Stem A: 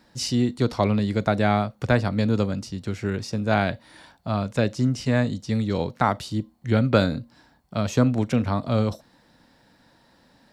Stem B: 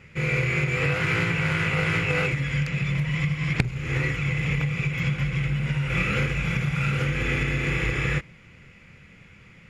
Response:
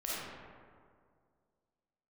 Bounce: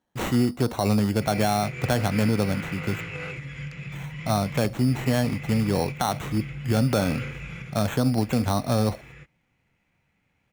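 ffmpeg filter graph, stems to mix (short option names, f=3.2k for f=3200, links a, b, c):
-filter_complex "[0:a]agate=range=-22dB:threshold=-49dB:ratio=16:detection=peak,equalizer=f=760:w=5.3:g=7,acrusher=samples=9:mix=1:aa=0.000001,volume=1dB,asplit=3[a][b][c];[a]atrim=end=3.01,asetpts=PTS-STARTPTS,afade=t=out:st=3.006:d=0.004:c=hsin[d];[b]atrim=start=3.01:end=3.92,asetpts=PTS-STARTPTS,volume=0[e];[c]atrim=start=3.92,asetpts=PTS-STARTPTS,afade=t=in:d=0.004:c=hsin[f];[d][e][f]concat=n=3:v=0:a=1[g];[1:a]adelay=1050,volume=-10.5dB,afade=t=out:st=7.46:d=0.53:silence=0.266073[h];[g][h]amix=inputs=2:normalize=0,alimiter=limit=-13dB:level=0:latency=1:release=57"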